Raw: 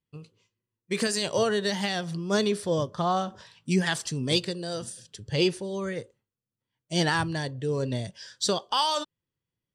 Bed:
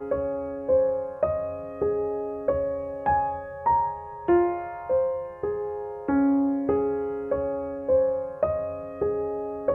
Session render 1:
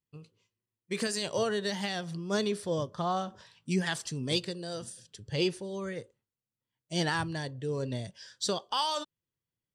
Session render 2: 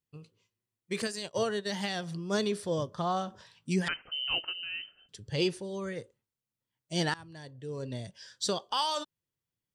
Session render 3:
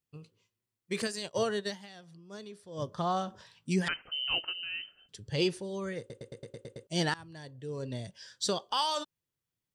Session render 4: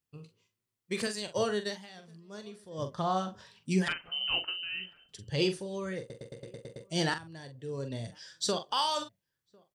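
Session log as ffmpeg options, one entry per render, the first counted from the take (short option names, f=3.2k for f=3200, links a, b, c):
-af "volume=-5dB"
-filter_complex "[0:a]asettb=1/sr,asplit=3[a][b][c];[a]atrim=end=1.024[d];[b]atrim=start=1.02:end=1.7,asetpts=PTS-STARTPTS,afade=t=in:d=0.004:c=qsin,afade=t=out:st=0.676:d=0.004:c=qsin,agate=range=-33dB:threshold=-29dB:ratio=3:release=100:detection=peak[e];[c]atrim=start=1.696[f];[d][e]acrossfade=d=0.004:c1=hsin:c2=qsin[g];[g][f]acrossfade=d=0.004:c1=qsin:c2=hsin,asettb=1/sr,asplit=3[h][i][j];[h]atrim=end=3.884[k];[i]atrim=start=3.88:end=5.09,asetpts=PTS-STARTPTS,afade=t=in:d=0.004:c=qsin,afade=t=out:st=1.206:d=0.004:c=qsin,lowpass=f=2.7k:t=q:w=0.5098,lowpass=f=2.7k:t=q:w=0.6013,lowpass=f=2.7k:t=q:w=0.9,lowpass=f=2.7k:t=q:w=2.563,afreqshift=-3200[l];[j]atrim=start=5.086[m];[k][l]acrossfade=d=0.004:c1=hsin:c2=qsin[n];[n][m]acrossfade=d=0.004:c1=qsin:c2=hsin,asplit=2[o][p];[o]atrim=end=7.14,asetpts=PTS-STARTPTS,afade=t=out:st=7.136:d=0.004:c=hsin:silence=0.0841395[q];[p]atrim=start=7.14,asetpts=PTS-STARTPTS,afade=t=in:d=1.18:silence=0.0841395[r];[q][r]concat=n=2:v=0:a=1"
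-filter_complex "[0:a]asplit=11[a][b][c][d][e][f][g][h][i][j][k];[a]atrim=end=1.8,asetpts=PTS-STARTPTS,afade=t=out:st=1.68:d=0.12:c=qua:silence=0.158489[l];[b]atrim=start=1.8:end=2.71,asetpts=PTS-STARTPTS,volume=-16dB[m];[c]atrim=start=2.71:end=6.102,asetpts=PTS-STARTPTS,afade=t=in:d=0.12:c=qua:silence=0.158489[n];[d]atrim=start=5.988:end=6.102[o];[e]atrim=start=5.988:end=6.102[p];[f]atrim=start=5.988:end=6.102[q];[g]atrim=start=5.988:end=6.102[r];[h]atrim=start=5.988:end=6.102[s];[i]atrim=start=5.988:end=6.102[t];[j]atrim=start=5.988:end=6.102[u];[k]atrim=start=6.868[v];[l][m][n]concat=n=3:v=0:a=1[w];[w][o]acrossfade=d=0.004:c1=hsin:c2=hsin[x];[x][p]acrossfade=d=0.004:c1=hsin:c2=hsin[y];[y][q]acrossfade=d=0.004:c1=hsin:c2=hsin[z];[z][r]acrossfade=d=0.004:c1=hsin:c2=hsin[aa];[aa][s]acrossfade=d=0.004:c1=hsin:c2=hsin[ab];[ab][t]acrossfade=d=0.004:c1=hsin:c2=hsin[ac];[ac][u]acrossfade=d=0.004:c1=hsin:c2=hsin[ad];[ad][v]acrossfade=d=0.004:c1=hsin:c2=hsin"
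-filter_complex "[0:a]asplit=2[a][b];[b]adelay=43,volume=-9dB[c];[a][c]amix=inputs=2:normalize=0,asplit=2[d][e];[e]adelay=1050,volume=-29dB,highshelf=f=4k:g=-23.6[f];[d][f]amix=inputs=2:normalize=0"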